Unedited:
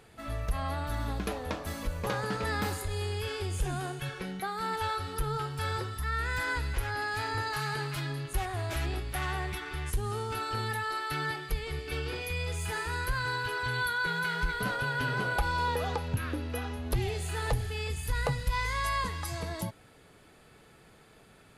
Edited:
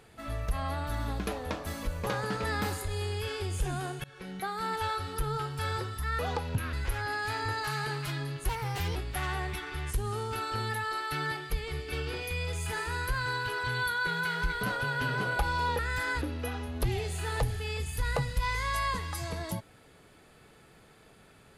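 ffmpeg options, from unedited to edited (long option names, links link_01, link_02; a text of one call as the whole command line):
ffmpeg -i in.wav -filter_complex "[0:a]asplit=8[link_01][link_02][link_03][link_04][link_05][link_06][link_07][link_08];[link_01]atrim=end=4.04,asetpts=PTS-STARTPTS,afade=type=out:start_time=4.036:duration=0.004:curve=hsin:silence=0.0630957[link_09];[link_02]atrim=start=4.04:end=6.192,asetpts=PTS-STARTPTS,afade=type=in:duration=0.39:silence=0.0630957[link_10];[link_03]atrim=start=15.778:end=16.322[link_11];[link_04]atrim=start=6.618:end=8.384[link_12];[link_05]atrim=start=8.38:end=8.95,asetpts=PTS-STARTPTS,asetrate=53802,aresample=44100,atrim=end_sample=20604,asetpts=PTS-STARTPTS[link_13];[link_06]atrim=start=8.946:end=15.782[link_14];[link_07]atrim=start=6.188:end=6.622[link_15];[link_08]atrim=start=16.318[link_16];[link_09][link_10]concat=n=2:v=0:a=1[link_17];[link_17][link_11]acrossfade=duration=0.004:curve1=hsin:curve2=hsin[link_18];[link_18][link_12]acrossfade=duration=0.004:curve1=hsin:curve2=hsin[link_19];[link_19][link_13]acrossfade=duration=0.004:curve1=hsin:curve2=hsin[link_20];[link_20][link_14]acrossfade=duration=0.004:curve1=hsin:curve2=hsin[link_21];[link_21][link_15]acrossfade=duration=0.004:curve1=hsin:curve2=hsin[link_22];[link_22][link_16]acrossfade=duration=0.004:curve1=hsin:curve2=hsin" out.wav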